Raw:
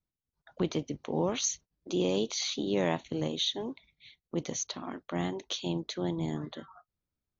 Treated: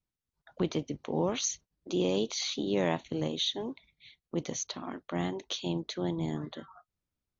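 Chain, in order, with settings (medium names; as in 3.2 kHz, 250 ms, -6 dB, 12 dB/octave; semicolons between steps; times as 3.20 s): Bessel low-pass 8.6 kHz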